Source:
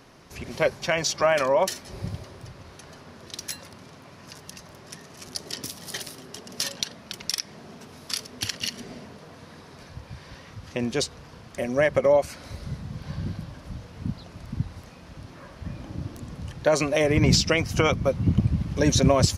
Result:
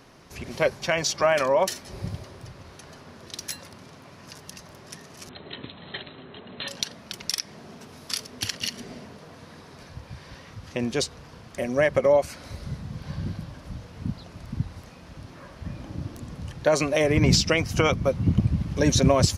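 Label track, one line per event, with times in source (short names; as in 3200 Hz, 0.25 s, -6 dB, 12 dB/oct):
5.290000	6.680000	brick-wall FIR low-pass 4200 Hz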